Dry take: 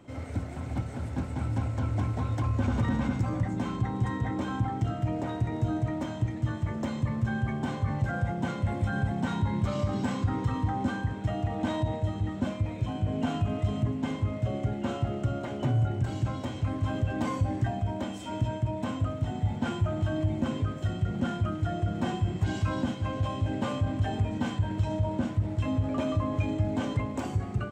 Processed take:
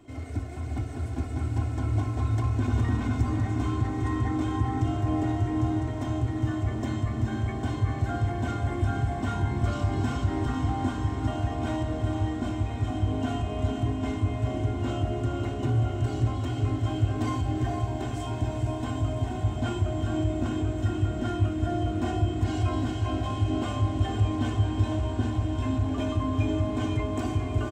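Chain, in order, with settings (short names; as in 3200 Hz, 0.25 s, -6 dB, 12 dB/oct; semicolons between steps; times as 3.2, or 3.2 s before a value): bell 1200 Hz -4 dB 3 oct; comb 2.8 ms, depth 70%; diffused feedback echo 0.464 s, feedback 79%, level -6 dB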